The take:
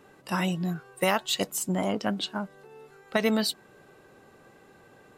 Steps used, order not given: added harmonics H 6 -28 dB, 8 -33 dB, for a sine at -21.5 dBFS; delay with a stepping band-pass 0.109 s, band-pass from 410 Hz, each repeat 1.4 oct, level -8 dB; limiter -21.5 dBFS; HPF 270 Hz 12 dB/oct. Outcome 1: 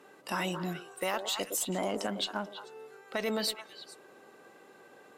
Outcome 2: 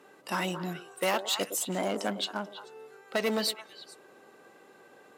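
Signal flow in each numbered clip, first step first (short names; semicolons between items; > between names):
delay with a stepping band-pass > limiter > HPF > added harmonics; delay with a stepping band-pass > added harmonics > limiter > HPF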